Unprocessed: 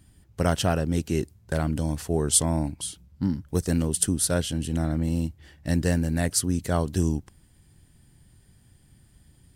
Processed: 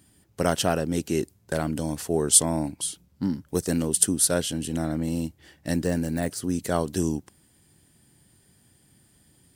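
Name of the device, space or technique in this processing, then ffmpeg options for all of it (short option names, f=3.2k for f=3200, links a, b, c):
filter by subtraction: -filter_complex "[0:a]asettb=1/sr,asplit=3[a][b][c];[a]atrim=end=5.734[d];[b]atrim=start=5.73:end=6.63,asetpts=PTS-STARTPTS,afade=t=in:d=0.004:c=qsin,afade=t=out:st=0.896:d=0.004:c=qsin,deesser=0.8[e];[c]atrim=start=6.626[f];[d][e]acrossfade=d=0.004:c1=hsin:c2=qsin[g];[g][f]acrossfade=d=0.004:c1=qsin:c2=hsin,asplit=2[h][i];[i]lowpass=330,volume=-1[j];[h][j]amix=inputs=2:normalize=0,highshelf=f=5.2k:g=5"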